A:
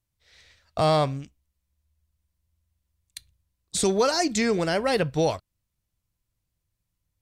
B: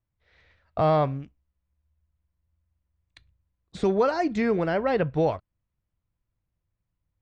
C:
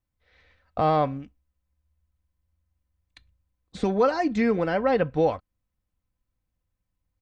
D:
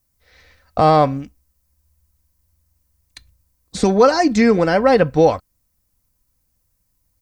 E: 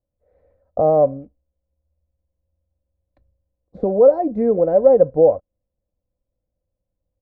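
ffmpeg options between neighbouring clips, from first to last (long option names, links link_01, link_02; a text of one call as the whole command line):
ffmpeg -i in.wav -af "lowpass=1900" out.wav
ffmpeg -i in.wav -af "aecho=1:1:3.9:0.41" out.wav
ffmpeg -i in.wav -af "aexciter=amount=3.2:drive=6.3:freq=4600,volume=9dB" out.wav
ffmpeg -i in.wav -af "lowpass=frequency=570:width_type=q:width=4.9,volume=-9dB" out.wav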